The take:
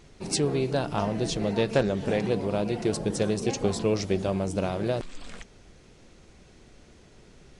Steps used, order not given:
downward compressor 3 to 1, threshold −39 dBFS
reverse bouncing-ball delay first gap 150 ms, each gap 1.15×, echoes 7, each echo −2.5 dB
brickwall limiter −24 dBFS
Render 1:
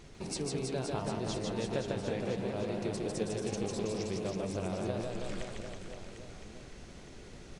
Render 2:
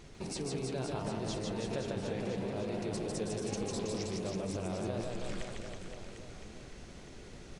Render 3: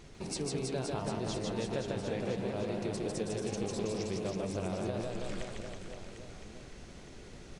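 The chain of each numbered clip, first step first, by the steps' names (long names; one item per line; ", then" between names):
downward compressor, then brickwall limiter, then reverse bouncing-ball delay
brickwall limiter, then downward compressor, then reverse bouncing-ball delay
downward compressor, then reverse bouncing-ball delay, then brickwall limiter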